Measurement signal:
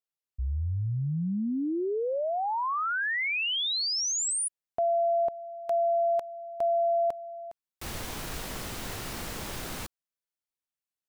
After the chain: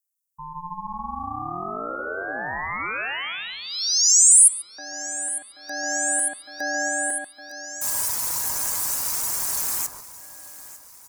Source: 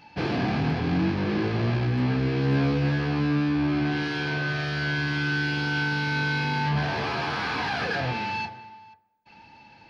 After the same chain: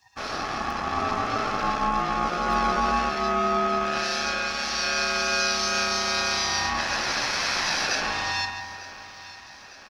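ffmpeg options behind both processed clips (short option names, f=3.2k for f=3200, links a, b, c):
-filter_complex "[0:a]asplit=2[a][b];[b]adelay=140,lowpass=f=1.8k:p=1,volume=-4dB,asplit=2[c][d];[d]adelay=140,lowpass=f=1.8k:p=1,volume=0.45,asplit=2[e][f];[f]adelay=140,lowpass=f=1.8k:p=1,volume=0.45,asplit=2[g][h];[h]adelay=140,lowpass=f=1.8k:p=1,volume=0.45,asplit=2[i][j];[j]adelay=140,lowpass=f=1.8k:p=1,volume=0.45,asplit=2[k][l];[l]adelay=140,lowpass=f=1.8k:p=1,volume=0.45[m];[c][e][g][i][k][m]amix=inputs=6:normalize=0[n];[a][n]amix=inputs=2:normalize=0,aeval=exprs='val(0)*sin(2*PI*440*n/s)':c=same,afftdn=nr=14:nf=-44,aexciter=amount=14.9:drive=7.1:freq=5.5k,asplit=2[o][p];[p]aecho=0:1:901|1802|2703|3604|4505:0.133|0.0747|0.0418|0.0234|0.0131[q];[o][q]amix=inputs=2:normalize=0,aeval=exprs='val(0)*sin(2*PI*530*n/s)':c=same,tiltshelf=f=700:g=-6,dynaudnorm=f=610:g=3:m=4dB,volume=-1dB"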